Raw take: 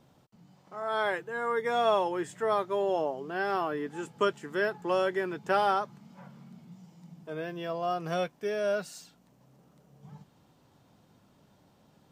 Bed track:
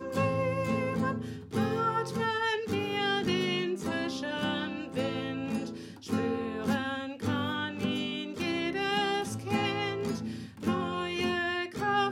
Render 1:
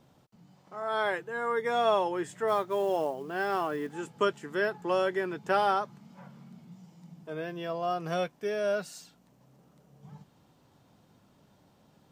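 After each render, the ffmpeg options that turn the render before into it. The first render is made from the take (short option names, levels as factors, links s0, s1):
-filter_complex "[0:a]asplit=3[s0][s1][s2];[s0]afade=t=out:st=2.47:d=0.02[s3];[s1]acrusher=bits=7:mode=log:mix=0:aa=0.000001,afade=t=in:st=2.47:d=0.02,afade=t=out:st=3.93:d=0.02[s4];[s2]afade=t=in:st=3.93:d=0.02[s5];[s3][s4][s5]amix=inputs=3:normalize=0"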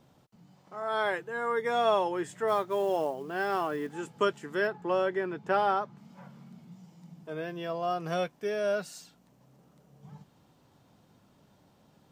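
-filter_complex "[0:a]asettb=1/sr,asplit=3[s0][s1][s2];[s0]atrim=end=4.674[s3];[s1]atrim=start=4.67:end=5.98,asetpts=PTS-STARTPTS,afade=t=in:d=0.004:c=qsin,afade=t=out:st=1.306:d=0.004:c=qsin,highshelf=f=4100:g=-11[s4];[s2]atrim=start=5.976[s5];[s3][s4]acrossfade=d=0.004:c1=hsin:c2=qsin[s6];[s6][s5]acrossfade=d=0.004:c1=qsin:c2=hsin"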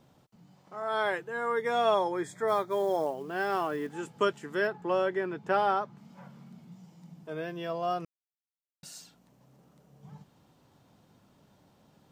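-filter_complex "[0:a]asettb=1/sr,asplit=3[s0][s1][s2];[s0]atrim=end=1.944[s3];[s1]atrim=start=1.94:end=3.07,asetpts=PTS-STARTPTS,afade=t=in:d=0.004:c=qsin,afade=t=out:st=1.126:d=0.004:c=qsin,asuperstop=centerf=2800:order=12:qfactor=4[s4];[s2]atrim=start=3.066[s5];[s3][s4]acrossfade=d=0.004:c1=hsin:c2=qsin[s6];[s6][s5]acrossfade=d=0.004:c1=qsin:c2=hsin,asplit=3[s7][s8][s9];[s7]atrim=end=8.05,asetpts=PTS-STARTPTS,afade=t=out:st=8.046:d=0.004:c=hsin[s10];[s8]atrim=start=8.05:end=8.83,asetpts=PTS-STARTPTS,volume=0[s11];[s9]atrim=start=8.83,asetpts=PTS-STARTPTS,afade=t=in:d=0.004:c=hsin[s12];[s10][s11][s12]concat=n=3:v=0:a=1"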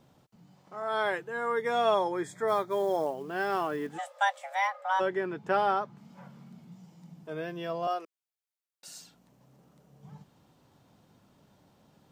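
-filter_complex "[0:a]asplit=3[s0][s1][s2];[s0]afade=t=out:st=3.97:d=0.02[s3];[s1]afreqshift=390,afade=t=in:st=3.97:d=0.02,afade=t=out:st=4.99:d=0.02[s4];[s2]afade=t=in:st=4.99:d=0.02[s5];[s3][s4][s5]amix=inputs=3:normalize=0,asettb=1/sr,asplit=3[s6][s7][s8];[s6]atrim=end=7.874[s9];[s7]atrim=start=7.87:end=8.88,asetpts=PTS-STARTPTS,afade=t=in:d=0.004:c=qsin,afade=t=out:st=1.006:d=0.004:c=qsin,highpass=f=360:w=0.5412,highpass=f=360:w=1.3066[s10];[s8]atrim=start=8.876[s11];[s9][s10]acrossfade=d=0.004:c1=hsin:c2=qsin[s12];[s12][s11]acrossfade=d=0.004:c1=qsin:c2=hsin"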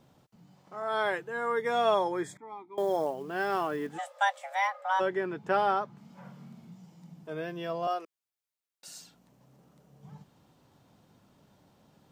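-filter_complex "[0:a]asettb=1/sr,asplit=3[s0][s1][s2];[s0]atrim=end=2.374[s3];[s1]atrim=start=2.37:end=2.78,asetpts=PTS-STARTPTS,afade=t=in:d=0.004:c=qsin,afade=t=out:st=0.406:d=0.004:c=qsin,asplit=3[s4][s5][s6];[s4]bandpass=f=300:t=q:w=8,volume=1[s7];[s5]bandpass=f=870:t=q:w=8,volume=0.501[s8];[s6]bandpass=f=2240:t=q:w=8,volume=0.355[s9];[s7][s8][s9]amix=inputs=3:normalize=0[s10];[s2]atrim=start=2.776[s11];[s3][s10]acrossfade=d=0.004:c1=hsin:c2=qsin[s12];[s12][s11]acrossfade=d=0.004:c1=qsin:c2=hsin,asettb=1/sr,asplit=3[s13][s14][s15];[s13]atrim=end=6.204[s16];[s14]atrim=start=6.2:end=6.71,asetpts=PTS-STARTPTS,afade=t=in:d=0.004:c=qsin,afade=t=out:st=0.506:d=0.004:c=qsin,asplit=2[s17][s18];[s18]adelay=48,volume=0.562[s19];[s17][s19]amix=inputs=2:normalize=0,atrim=end_sample=22491[s20];[s15]atrim=start=6.706[s21];[s16][s20]acrossfade=d=0.004:c1=hsin:c2=qsin[s22];[s22][s21]acrossfade=d=0.004:c1=qsin:c2=hsin"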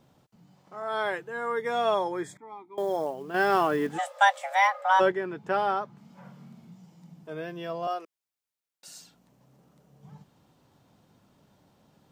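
-filter_complex "[0:a]asettb=1/sr,asplit=3[s0][s1][s2];[s0]atrim=end=3.344[s3];[s1]atrim=start=3.34:end=5.12,asetpts=PTS-STARTPTS,afade=t=in:d=0.004:c=qsin,afade=t=out:st=1.776:d=0.004:c=qsin,acontrast=75[s4];[s2]atrim=start=5.116[s5];[s3][s4]acrossfade=d=0.004:c1=hsin:c2=qsin[s6];[s6][s5]acrossfade=d=0.004:c1=qsin:c2=hsin"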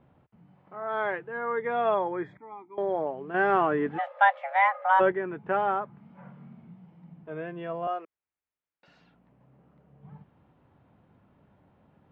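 -af "lowpass=f=2500:w=0.5412,lowpass=f=2500:w=1.3066,equalizer=f=73:t=o:w=0.83:g=6.5"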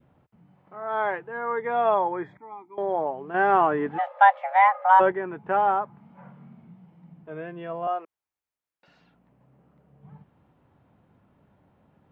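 -af "adynamicequalizer=threshold=0.0126:dfrequency=870:dqfactor=1.9:tfrequency=870:tqfactor=1.9:attack=5:release=100:ratio=0.375:range=3.5:mode=boostabove:tftype=bell"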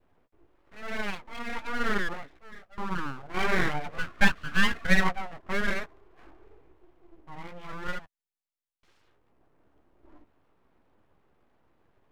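-af "flanger=delay=9.3:depth=9.2:regen=10:speed=1:shape=triangular,aeval=exprs='abs(val(0))':c=same"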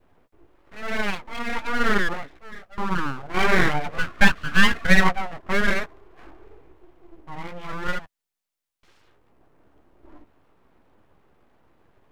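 -af "volume=2.24,alimiter=limit=0.794:level=0:latency=1"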